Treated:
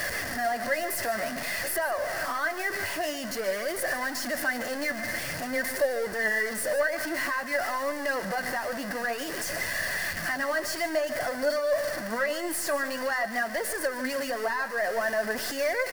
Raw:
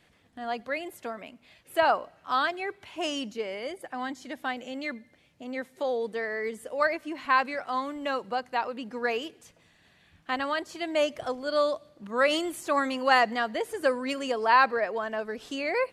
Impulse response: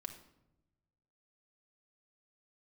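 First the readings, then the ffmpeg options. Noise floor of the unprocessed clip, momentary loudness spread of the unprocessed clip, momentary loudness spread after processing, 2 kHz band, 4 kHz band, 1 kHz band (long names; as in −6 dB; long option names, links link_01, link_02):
−63 dBFS, 13 LU, 4 LU, +3.5 dB, −0.5 dB, −4.5 dB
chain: -filter_complex "[0:a]aeval=exprs='val(0)+0.5*0.0473*sgn(val(0))':channel_layout=same,tiltshelf=frequency=970:gain=-4.5,acompressor=threshold=-26dB:ratio=6,aeval=exprs='0.188*(cos(1*acos(clip(val(0)/0.188,-1,1)))-cos(1*PI/2))+0.0422*(cos(5*acos(clip(val(0)/0.188,-1,1)))-cos(5*PI/2))+0.00841*(cos(8*acos(clip(val(0)/0.188,-1,1)))-cos(8*PI/2))':channel_layout=same,flanger=delay=1.7:depth=8.7:regen=51:speed=0.51:shape=sinusoidal,superequalizer=8b=2.24:11b=2.24:12b=0.501:13b=0.355:15b=0.631,asplit=2[link_01][link_02];[link_02]aecho=0:1:147:0.2[link_03];[link_01][link_03]amix=inputs=2:normalize=0,volume=-4dB"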